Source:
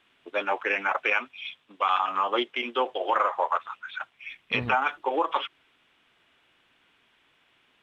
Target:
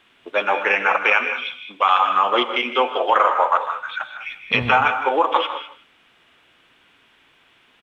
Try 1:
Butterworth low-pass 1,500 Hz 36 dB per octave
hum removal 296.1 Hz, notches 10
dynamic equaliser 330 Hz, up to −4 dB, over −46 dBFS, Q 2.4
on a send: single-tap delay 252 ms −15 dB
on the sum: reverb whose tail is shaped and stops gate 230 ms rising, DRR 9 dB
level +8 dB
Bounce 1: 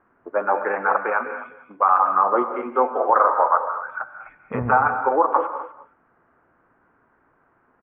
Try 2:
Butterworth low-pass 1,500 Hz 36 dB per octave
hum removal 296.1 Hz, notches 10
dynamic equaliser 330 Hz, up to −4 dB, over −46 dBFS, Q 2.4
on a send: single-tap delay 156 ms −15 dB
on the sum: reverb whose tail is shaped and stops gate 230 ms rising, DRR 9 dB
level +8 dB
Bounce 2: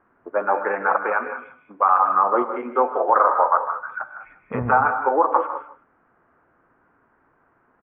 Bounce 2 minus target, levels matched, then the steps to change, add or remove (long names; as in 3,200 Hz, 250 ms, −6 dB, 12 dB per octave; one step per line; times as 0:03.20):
2,000 Hz band −5.5 dB
remove: Butterworth low-pass 1,500 Hz 36 dB per octave